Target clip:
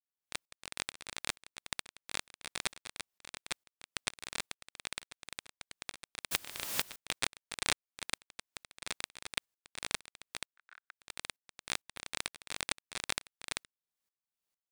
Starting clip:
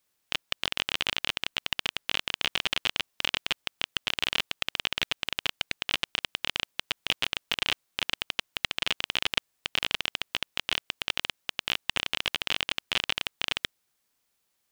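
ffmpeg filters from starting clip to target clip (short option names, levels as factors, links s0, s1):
-filter_complex "[0:a]asettb=1/sr,asplit=3[s0][s1][s2];[s0]atrim=end=6.314[s3];[s1]atrim=start=6.31:end=6.96,asetpts=PTS-STARTPTS,afade=t=in:d=0.004:c=qsin,afade=t=out:st=0.646:d=0.004:c=qsin,aeval=exprs='val(0)+0.5*0.0596*sgn(val(0))':c=same[s4];[s2]atrim=start=6.956[s5];[s3][s4]acrossfade=d=0.004:c1=hsin:c2=qsin[s6];[s6][s5]acrossfade=d=0.004:c1=qsin:c2=hsin,aeval=exprs='0.794*(cos(1*acos(clip(val(0)/0.794,-1,1)))-cos(1*PI/2))+0.1*(cos(3*acos(clip(val(0)/0.794,-1,1)))-cos(3*PI/2))+0.0501*(cos(5*acos(clip(val(0)/0.794,-1,1)))-cos(5*PI/2))+0.178*(cos(7*acos(clip(val(0)/0.794,-1,1)))-cos(7*PI/2))':c=same,asettb=1/sr,asplit=3[s7][s8][s9];[s7]atrim=end=10.524[s10];[s8]atrim=start=10.52:end=11.02,asetpts=PTS-STARTPTS,afade=t=in:d=0.004:c=qsin,afade=t=out:st=0.496:d=0.004:c=qsin,bandpass=f=1500:t=q:w=4.9:csg=0[s11];[s9]atrim=start=11.016[s12];[s10][s11]acrossfade=d=0.004:c1=hsin:c2=qsin[s13];[s13][s12]acrossfade=d=0.004:c1=qsin:c2=hsin,agate=range=0.447:threshold=0.01:ratio=16:detection=peak,aeval=exprs='val(0)*pow(10,-24*if(lt(mod(-2.2*n/s,1),2*abs(-2.2)/1000),1-mod(-2.2*n/s,1)/(2*abs(-2.2)/1000),(mod(-2.2*n/s,1)-2*abs(-2.2)/1000)/(1-2*abs(-2.2)/1000))/20)':c=same,volume=1.26"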